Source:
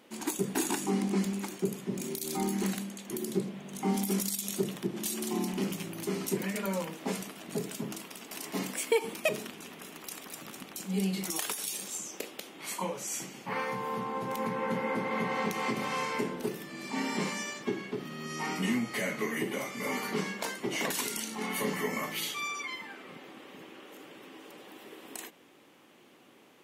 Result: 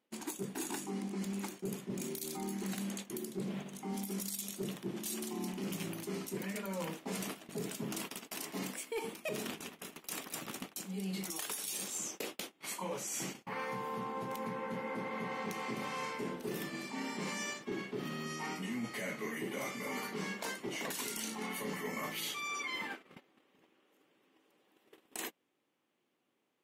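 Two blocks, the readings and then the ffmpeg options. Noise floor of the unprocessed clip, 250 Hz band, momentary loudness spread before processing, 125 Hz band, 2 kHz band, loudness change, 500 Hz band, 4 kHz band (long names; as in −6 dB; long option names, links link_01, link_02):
−58 dBFS, −6.5 dB, 13 LU, −6.0 dB, −5.5 dB, −6.0 dB, −7.0 dB, −4.5 dB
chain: -af "agate=range=-27dB:threshold=-44dB:ratio=16:detection=peak,areverse,acompressor=threshold=-41dB:ratio=12,areverse,volume=35.5dB,asoftclip=hard,volume=-35.5dB,volume=5dB"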